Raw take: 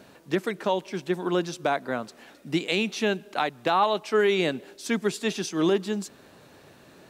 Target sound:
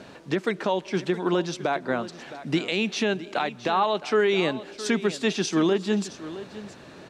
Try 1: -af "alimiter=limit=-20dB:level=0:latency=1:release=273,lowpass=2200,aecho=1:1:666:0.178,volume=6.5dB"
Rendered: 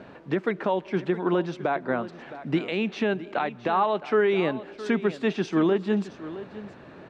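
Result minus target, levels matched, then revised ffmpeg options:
8,000 Hz band −16.0 dB
-af "alimiter=limit=-20dB:level=0:latency=1:release=273,lowpass=6500,aecho=1:1:666:0.178,volume=6.5dB"

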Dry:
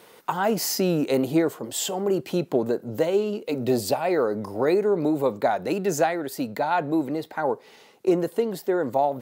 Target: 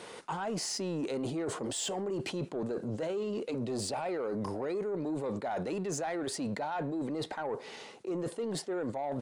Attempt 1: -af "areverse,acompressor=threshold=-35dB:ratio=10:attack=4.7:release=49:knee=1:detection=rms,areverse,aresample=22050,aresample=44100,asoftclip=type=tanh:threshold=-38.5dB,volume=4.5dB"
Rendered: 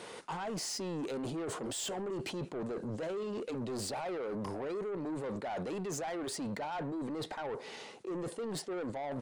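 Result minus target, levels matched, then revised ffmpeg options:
soft clipping: distortion +9 dB
-af "areverse,acompressor=threshold=-35dB:ratio=10:attack=4.7:release=49:knee=1:detection=rms,areverse,aresample=22050,aresample=44100,asoftclip=type=tanh:threshold=-31dB,volume=4.5dB"

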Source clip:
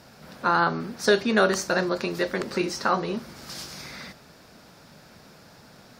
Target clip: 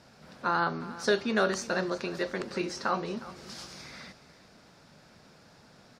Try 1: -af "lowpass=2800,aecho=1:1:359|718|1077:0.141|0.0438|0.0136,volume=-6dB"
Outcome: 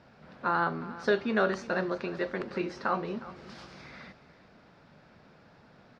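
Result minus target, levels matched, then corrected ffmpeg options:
8,000 Hz band −14.0 dB
-af "lowpass=9000,aecho=1:1:359|718|1077:0.141|0.0438|0.0136,volume=-6dB"

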